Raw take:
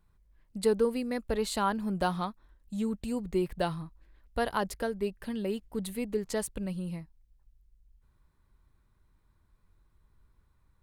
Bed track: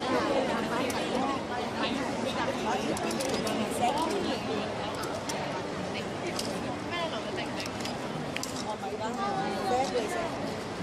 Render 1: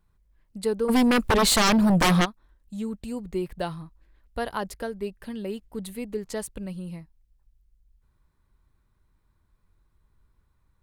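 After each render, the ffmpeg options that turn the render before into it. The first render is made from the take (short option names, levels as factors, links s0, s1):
-filter_complex "[0:a]asplit=3[s0][s1][s2];[s0]afade=t=out:st=0.88:d=0.02[s3];[s1]aeval=exprs='0.158*sin(PI/2*5.01*val(0)/0.158)':c=same,afade=t=in:st=0.88:d=0.02,afade=t=out:st=2.24:d=0.02[s4];[s2]afade=t=in:st=2.24:d=0.02[s5];[s3][s4][s5]amix=inputs=3:normalize=0"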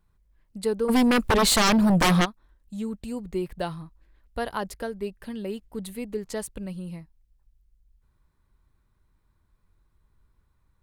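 -af anull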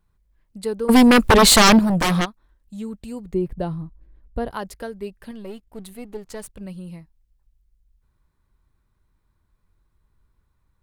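-filter_complex "[0:a]asettb=1/sr,asplit=3[s0][s1][s2];[s0]atrim=end=3.344[s3];[s1]atrim=start=3.34:end=4.51,asetpts=PTS-STARTPTS,afade=t=in:d=0.004:c=qsin,afade=t=out:st=1.166:d=0.004:c=qsin,tiltshelf=f=780:g=9[s4];[s2]atrim=start=4.506[s5];[s3][s4]acrossfade=d=0.004:c1=hsin:c2=qsin[s6];[s6][s5]acrossfade=d=0.004:c1=qsin:c2=hsin,asettb=1/sr,asplit=3[s7][s8][s9];[s7]atrim=end=5.314[s10];[s8]atrim=start=5.31:end=6.61,asetpts=PTS-STARTPTS,afade=t=in:d=0.004:c=qsin,afade=t=out:st=1.296:d=0.004:c=qsin,aeval=exprs='if(lt(val(0),0),0.447*val(0),val(0))':c=same[s11];[s9]atrim=start=6.606[s12];[s10][s11]acrossfade=d=0.004:c1=hsin:c2=qsin[s13];[s13][s12]acrossfade=d=0.004:c1=qsin:c2=hsin,asplit=3[s14][s15][s16];[s14]atrim=end=0.892[s17];[s15]atrim=start=0.888:end=1.792,asetpts=PTS-STARTPTS,volume=2.51[s18];[s16]atrim=start=1.788[s19];[s17][s18]acrossfade=d=0.004:c1=hsin:c2=hsin[s20];[s20][s19]acrossfade=d=0.004:c1=hsin:c2=hsin"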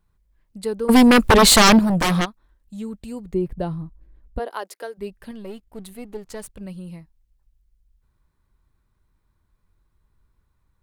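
-filter_complex "[0:a]asplit=3[s0][s1][s2];[s0]afade=t=out:st=4.38:d=0.02[s3];[s1]highpass=f=350:w=0.5412,highpass=f=350:w=1.3066,afade=t=in:st=4.38:d=0.02,afade=t=out:st=4.97:d=0.02[s4];[s2]afade=t=in:st=4.97:d=0.02[s5];[s3][s4][s5]amix=inputs=3:normalize=0"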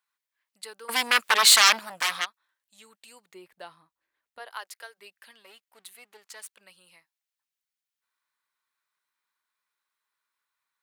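-af "highpass=1500,equalizer=f=11000:t=o:w=2:g=-2.5"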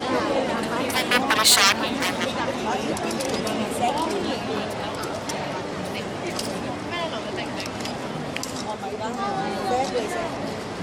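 -filter_complex "[1:a]volume=1.68[s0];[0:a][s0]amix=inputs=2:normalize=0"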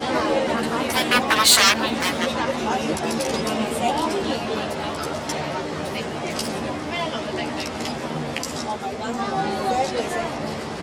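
-filter_complex "[0:a]asplit=2[s0][s1];[s1]adelay=13,volume=0.708[s2];[s0][s2]amix=inputs=2:normalize=0"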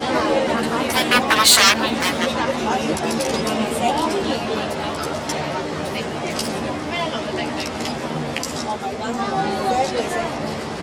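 -af "volume=1.33,alimiter=limit=0.891:level=0:latency=1"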